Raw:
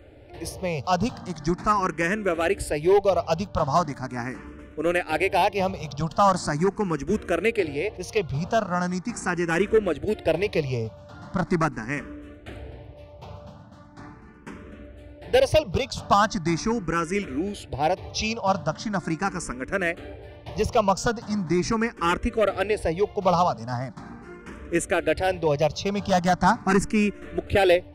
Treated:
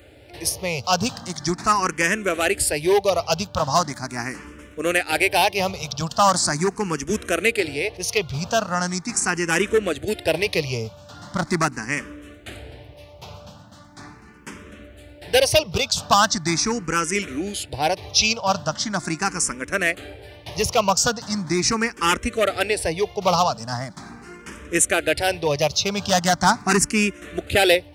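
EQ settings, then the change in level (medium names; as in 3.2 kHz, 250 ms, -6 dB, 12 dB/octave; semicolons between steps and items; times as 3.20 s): high-pass 49 Hz; treble shelf 2.1 kHz +10.5 dB; treble shelf 4.3 kHz +5.5 dB; 0.0 dB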